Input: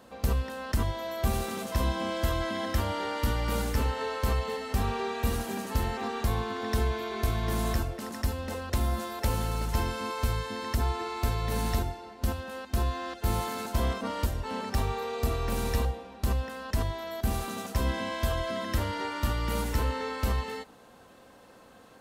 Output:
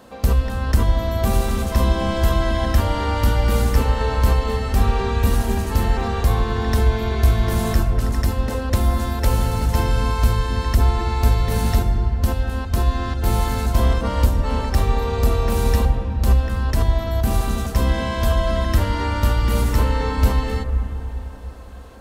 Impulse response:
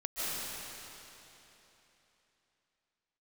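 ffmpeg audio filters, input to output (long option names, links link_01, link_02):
-filter_complex "[0:a]acontrast=76,asplit=2[link_01][link_02];[link_02]aemphasis=mode=reproduction:type=bsi[link_03];[1:a]atrim=start_sample=2205,lowpass=2300[link_04];[link_03][link_04]afir=irnorm=-1:irlink=0,volume=-14dB[link_05];[link_01][link_05]amix=inputs=2:normalize=0"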